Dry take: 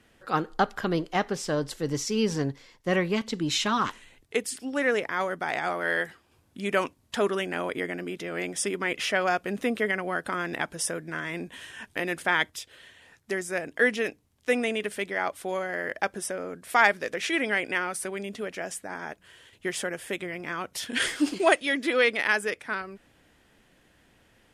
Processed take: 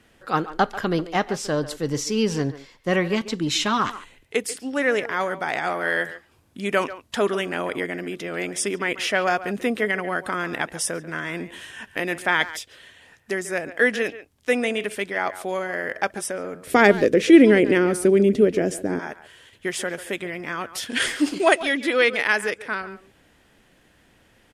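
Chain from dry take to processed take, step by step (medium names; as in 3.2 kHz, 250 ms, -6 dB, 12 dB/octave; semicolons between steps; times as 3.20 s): 16.67–18.99 s: resonant low shelf 580 Hz +13.5 dB, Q 1.5; speakerphone echo 140 ms, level -14 dB; trim +3.5 dB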